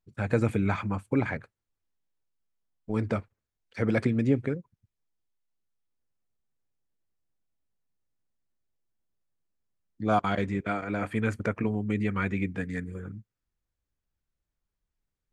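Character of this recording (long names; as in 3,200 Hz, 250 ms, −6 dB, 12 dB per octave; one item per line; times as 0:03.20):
background noise floor −87 dBFS
spectral slope −5.0 dB per octave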